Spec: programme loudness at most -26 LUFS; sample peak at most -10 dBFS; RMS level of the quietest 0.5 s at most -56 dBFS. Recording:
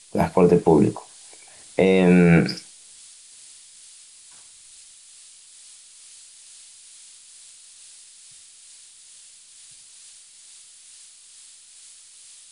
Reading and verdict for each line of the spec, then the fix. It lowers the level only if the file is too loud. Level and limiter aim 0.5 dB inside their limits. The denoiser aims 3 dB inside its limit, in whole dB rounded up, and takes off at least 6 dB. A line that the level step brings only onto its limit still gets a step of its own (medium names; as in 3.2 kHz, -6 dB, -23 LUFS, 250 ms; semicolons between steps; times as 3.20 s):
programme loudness -18.5 LUFS: fail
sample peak -5.5 dBFS: fail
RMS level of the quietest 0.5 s -48 dBFS: fail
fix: noise reduction 6 dB, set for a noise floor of -48 dBFS; trim -8 dB